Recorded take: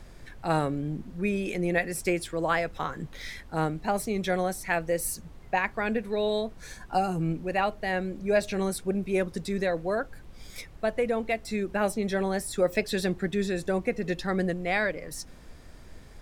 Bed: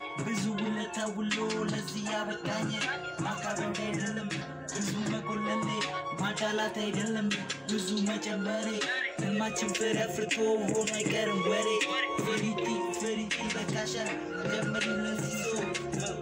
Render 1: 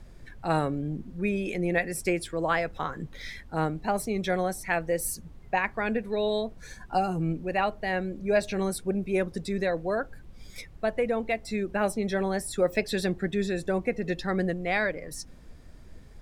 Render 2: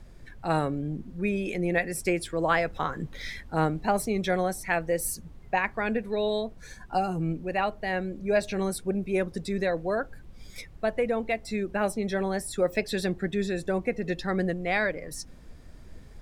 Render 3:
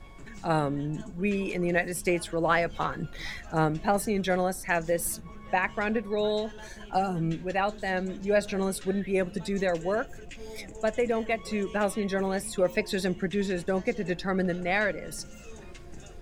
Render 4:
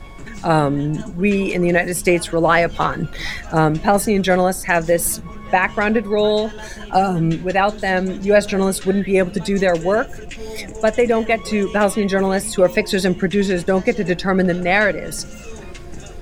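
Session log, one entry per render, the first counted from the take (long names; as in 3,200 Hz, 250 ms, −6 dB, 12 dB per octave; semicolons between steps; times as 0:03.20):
broadband denoise 6 dB, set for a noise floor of −48 dBFS
speech leveller 2 s
mix in bed −16 dB
level +11 dB; brickwall limiter −2 dBFS, peak gain reduction 3 dB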